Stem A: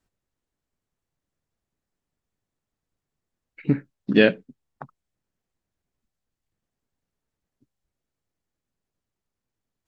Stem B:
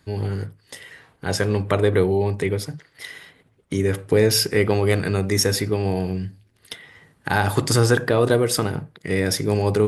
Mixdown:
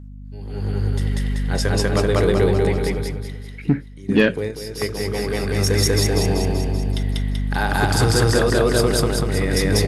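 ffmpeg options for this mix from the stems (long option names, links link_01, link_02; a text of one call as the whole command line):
ffmpeg -i stem1.wav -i stem2.wav -filter_complex "[0:a]aphaser=in_gain=1:out_gain=1:delay=4.2:decay=0.31:speed=0.25:type=triangular,aeval=exprs='val(0)+0.0112*(sin(2*PI*50*n/s)+sin(2*PI*2*50*n/s)/2+sin(2*PI*3*50*n/s)/3+sin(2*PI*4*50*n/s)/4+sin(2*PI*5*50*n/s)/5)':channel_layout=same,volume=3dB,asplit=2[link_01][link_02];[1:a]equalizer=frequency=4000:width_type=o:width=0.77:gain=3,adelay=250,volume=-6.5dB,asplit=2[link_03][link_04];[link_04]volume=-9.5dB[link_05];[link_02]apad=whole_len=446587[link_06];[link_03][link_06]sidechaingate=range=-11dB:threshold=-33dB:ratio=16:detection=peak[link_07];[link_05]aecho=0:1:192|384|576|768|960|1152|1344|1536|1728:1|0.57|0.325|0.185|0.106|0.0602|0.0343|0.0195|0.0111[link_08];[link_01][link_07][link_08]amix=inputs=3:normalize=0,dynaudnorm=framelen=150:gausssize=9:maxgain=17dB,asoftclip=type=tanh:threshold=-4.5dB" out.wav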